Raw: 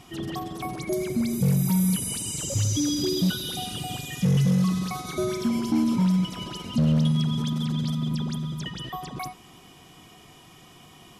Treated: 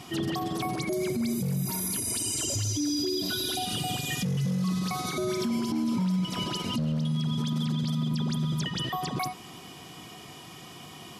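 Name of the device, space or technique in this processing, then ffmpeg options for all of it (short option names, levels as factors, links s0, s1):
broadcast voice chain: -filter_complex "[0:a]asettb=1/sr,asplit=3[s0][s1][s2];[s0]atrim=end=1.654[s3];[s1]atrim=start=1.65:end=3.65,asetpts=PTS-STARTPTS,afade=t=in:d=0.004:c=qsin,afade=t=out:st=1.996:d=0.004:c=qsin,aecho=1:1:2.9:0.96,atrim=end_sample=88200[s4];[s2]atrim=start=3.646[s5];[s3][s4]acrossfade=d=0.004:c1=hsin:c2=qsin[s6];[s6][s5]acrossfade=d=0.004:c1=qsin:c2=hsin,highpass=89,deesser=0.4,acompressor=threshold=0.0398:ratio=4,equalizer=f=4600:t=o:w=0.3:g=4,alimiter=level_in=1.26:limit=0.0631:level=0:latency=1:release=106,volume=0.794,volume=1.78"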